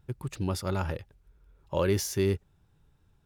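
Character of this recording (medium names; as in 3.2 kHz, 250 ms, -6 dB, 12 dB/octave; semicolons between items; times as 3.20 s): noise floor -67 dBFS; spectral tilt -5.5 dB/octave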